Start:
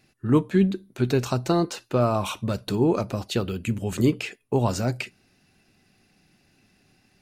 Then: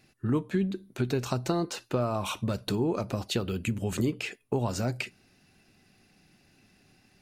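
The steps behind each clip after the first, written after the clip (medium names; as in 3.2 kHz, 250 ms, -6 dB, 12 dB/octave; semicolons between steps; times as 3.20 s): compression 3:1, threshold -26 dBFS, peak gain reduction 9 dB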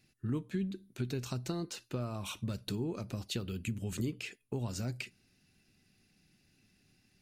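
peaking EQ 780 Hz -9.5 dB 2.2 oct; trim -5 dB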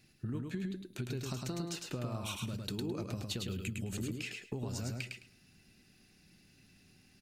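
compression 4:1, threshold -41 dBFS, peak gain reduction 10 dB; on a send: feedback delay 106 ms, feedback 19%, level -3.5 dB; on the sum: trim +4 dB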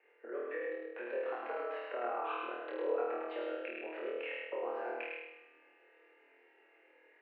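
flutter echo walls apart 4.3 m, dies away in 0.91 s; spring tank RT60 3 s, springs 35 ms, chirp 65 ms, DRR 19.5 dB; mistuned SSB +120 Hz 340–2100 Hz; trim +3.5 dB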